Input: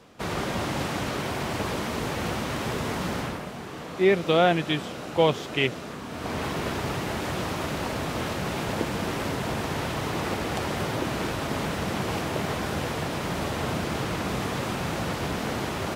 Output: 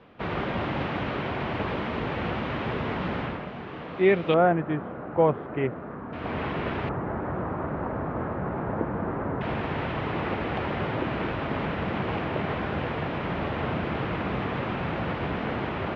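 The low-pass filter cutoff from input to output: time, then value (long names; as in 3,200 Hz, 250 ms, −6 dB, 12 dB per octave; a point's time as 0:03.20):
low-pass filter 24 dB per octave
3,100 Hz
from 0:04.34 1,600 Hz
from 0:06.13 2,900 Hz
from 0:06.89 1,500 Hz
from 0:09.41 2,900 Hz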